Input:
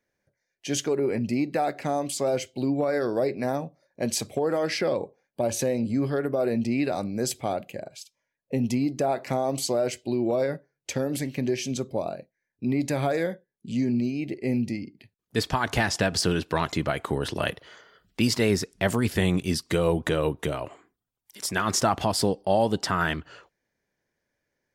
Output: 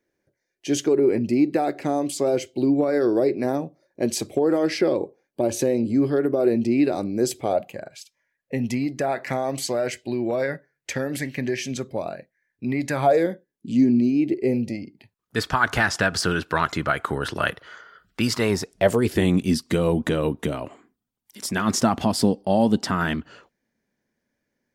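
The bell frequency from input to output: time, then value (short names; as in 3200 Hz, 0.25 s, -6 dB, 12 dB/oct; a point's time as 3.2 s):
bell +11 dB 0.68 oct
7.4 s 340 Hz
7.89 s 1800 Hz
12.88 s 1800 Hz
13.28 s 290 Hz
14.22 s 290 Hz
15.36 s 1400 Hz
18.3 s 1400 Hz
19.37 s 230 Hz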